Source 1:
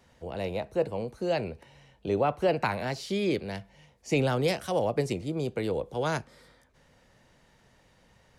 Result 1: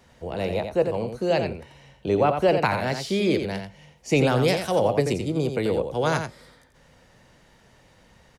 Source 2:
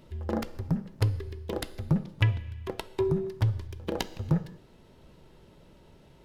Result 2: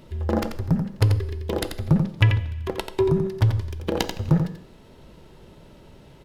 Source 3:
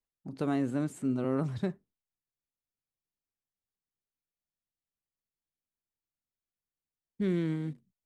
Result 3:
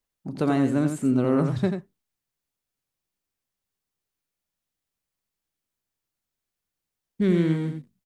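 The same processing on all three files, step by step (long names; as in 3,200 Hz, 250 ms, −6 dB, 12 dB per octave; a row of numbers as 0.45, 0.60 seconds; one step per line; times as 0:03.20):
single-tap delay 87 ms −7 dB
loudness normalisation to −24 LKFS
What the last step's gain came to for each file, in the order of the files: +5.0, +6.5, +8.0 decibels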